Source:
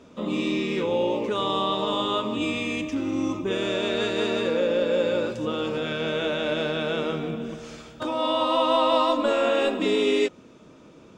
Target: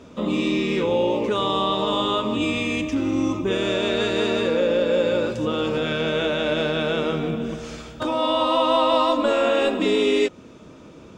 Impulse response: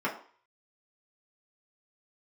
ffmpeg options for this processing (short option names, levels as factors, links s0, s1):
-filter_complex "[0:a]equalizer=f=61:w=0.95:g=6.5,asplit=2[s0][s1];[s1]alimiter=limit=0.0891:level=0:latency=1:release=224,volume=0.75[s2];[s0][s2]amix=inputs=2:normalize=0"